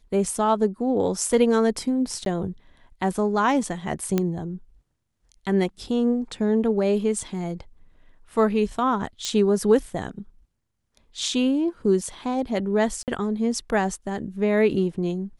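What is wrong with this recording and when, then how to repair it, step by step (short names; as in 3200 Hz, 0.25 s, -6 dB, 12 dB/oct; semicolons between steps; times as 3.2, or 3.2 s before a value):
2.25–2.26 gap 12 ms
4.18 pop -9 dBFS
9.25 pop -14 dBFS
13.03–13.08 gap 48 ms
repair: de-click; interpolate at 2.25, 12 ms; interpolate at 13.03, 48 ms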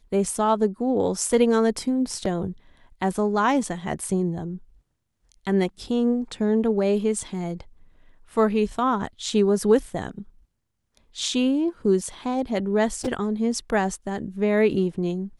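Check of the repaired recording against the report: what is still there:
none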